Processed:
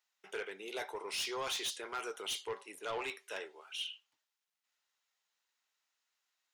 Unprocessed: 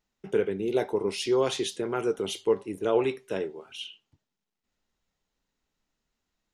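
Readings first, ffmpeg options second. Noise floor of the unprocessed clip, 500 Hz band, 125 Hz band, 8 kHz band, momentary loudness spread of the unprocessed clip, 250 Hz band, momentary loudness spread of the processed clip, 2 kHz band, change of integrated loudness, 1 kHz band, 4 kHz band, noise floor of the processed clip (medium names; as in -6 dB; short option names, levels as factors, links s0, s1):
-85 dBFS, -17.0 dB, -23.0 dB, -2.5 dB, 12 LU, -21.0 dB, 8 LU, -2.0 dB, -11.5 dB, -6.5 dB, -2.5 dB, under -85 dBFS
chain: -af "highpass=1100,asoftclip=type=tanh:threshold=0.0224,volume=1.12"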